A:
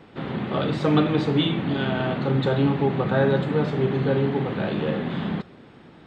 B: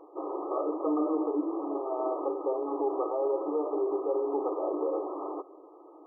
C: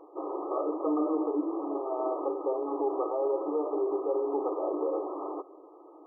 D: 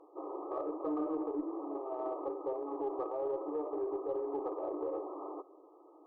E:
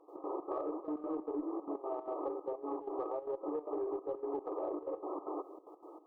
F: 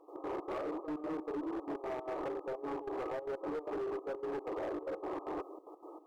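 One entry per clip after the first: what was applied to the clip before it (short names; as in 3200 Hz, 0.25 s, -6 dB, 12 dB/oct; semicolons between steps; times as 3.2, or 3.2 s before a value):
limiter -18.5 dBFS, peak gain reduction 10.5 dB; FFT band-pass 290–1300 Hz
nothing audible
added harmonics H 2 -23 dB, 4 -41 dB, 6 -43 dB, 8 -41 dB, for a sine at -18 dBFS; gain -7 dB
compressor 4:1, threshold -43 dBFS, peak gain reduction 10.5 dB; step gate ".x.xx.xxxx" 188 bpm -12 dB; gain +7.5 dB
hard clip -36.5 dBFS, distortion -11 dB; gain +2 dB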